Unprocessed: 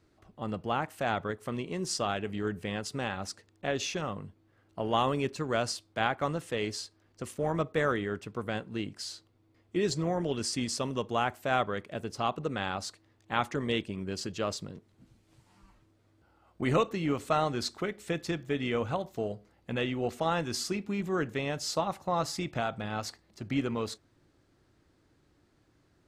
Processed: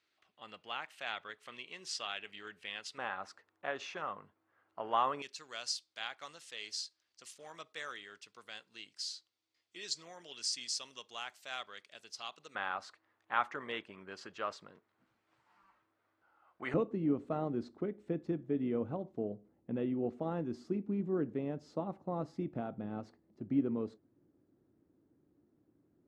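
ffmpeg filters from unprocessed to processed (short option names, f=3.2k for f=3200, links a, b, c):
-af "asetnsamples=n=441:p=0,asendcmd='2.98 bandpass f 1200;5.22 bandpass f 4900;12.55 bandpass f 1300;16.74 bandpass f 270',bandpass=f=3k:t=q:w=1.3:csg=0"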